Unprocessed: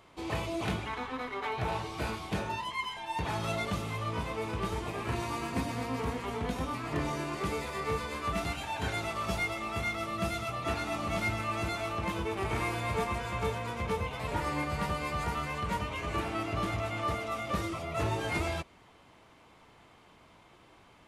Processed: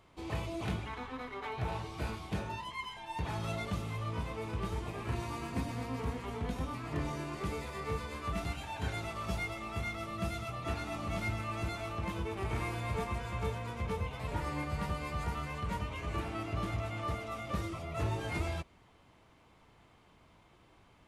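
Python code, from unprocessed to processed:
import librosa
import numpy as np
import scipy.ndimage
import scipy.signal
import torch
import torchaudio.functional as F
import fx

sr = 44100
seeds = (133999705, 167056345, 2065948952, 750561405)

y = fx.low_shelf(x, sr, hz=160.0, db=8.0)
y = y * librosa.db_to_amplitude(-6.0)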